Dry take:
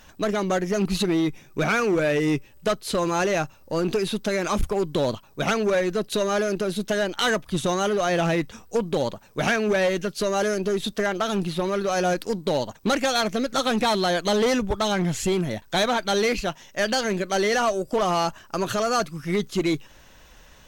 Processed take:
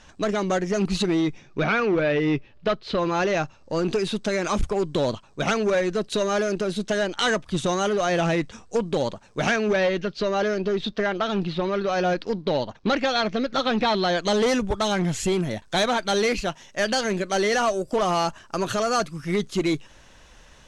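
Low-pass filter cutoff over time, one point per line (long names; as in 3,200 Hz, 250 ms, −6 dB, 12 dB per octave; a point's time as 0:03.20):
low-pass filter 24 dB per octave
0:01.15 8,600 Hz
0:01.72 4,300 Hz
0:02.93 4,300 Hz
0:03.96 8,800 Hz
0:09.41 8,800 Hz
0:09.93 4,800 Hz
0:14.01 4,800 Hz
0:14.47 11,000 Hz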